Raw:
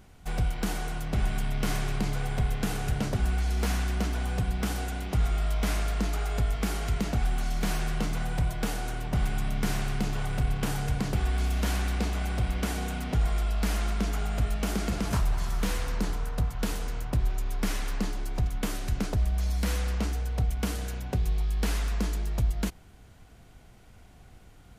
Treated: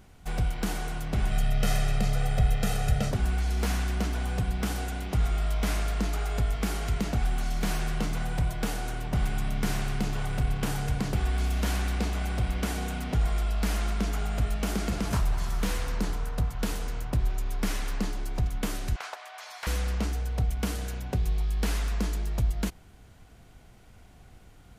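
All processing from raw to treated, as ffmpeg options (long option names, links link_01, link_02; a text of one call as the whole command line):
ffmpeg -i in.wav -filter_complex "[0:a]asettb=1/sr,asplit=3[link_01][link_02][link_03];[link_01]atrim=end=1.314[link_04];[link_02]atrim=start=1.31:end=3.11,asetpts=PTS-STARTPTS,afade=type=in:duration=0.004:curve=qsin,afade=type=out:start_time=1.796:duration=0.004:curve=qsin,bandreject=frequency=1100:width=7.5,aecho=1:1:1.6:0.76,atrim=end_sample=79380[link_05];[link_03]atrim=start=3.106[link_06];[link_04][link_05]acrossfade=duration=0.004:curve1=hsin:curve2=qsin[link_07];[link_07][link_06]acrossfade=duration=0.004:curve1=qsin:curve2=hsin,asettb=1/sr,asplit=3[link_08][link_09][link_10];[link_08]atrim=end=18.964[link_11];[link_09]atrim=start=18.96:end=19.67,asetpts=PTS-STARTPTS,afade=type=in:duration=0.004:curve=qsin,afade=type=out:start_time=0.706:duration=0.004:curve=qsin,highpass=frequency=740:width=0.5412,highpass=frequency=740:width=1.3066,asplit=2[link_12][link_13];[link_13]highpass=frequency=720:poles=1,volume=13dB,asoftclip=type=tanh:threshold=-20dB[link_14];[link_12][link_14]amix=inputs=2:normalize=0,lowpass=frequency=1800:poles=1,volume=-6dB[link_15];[link_10]atrim=start=19.666[link_16];[link_11][link_15]acrossfade=duration=0.004:curve1=hsin:curve2=qsin[link_17];[link_17][link_16]acrossfade=duration=0.004:curve1=qsin:curve2=hsin" out.wav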